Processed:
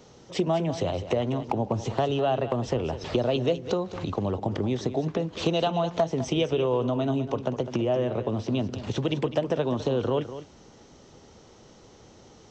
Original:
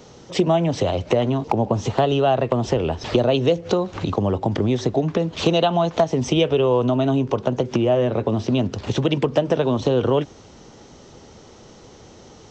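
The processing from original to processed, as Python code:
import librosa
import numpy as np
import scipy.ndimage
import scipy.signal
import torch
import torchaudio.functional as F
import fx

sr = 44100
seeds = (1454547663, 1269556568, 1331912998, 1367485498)

y = x + 10.0 ** (-12.5 / 20.0) * np.pad(x, (int(205 * sr / 1000.0), 0))[:len(x)]
y = y * 10.0 ** (-7.0 / 20.0)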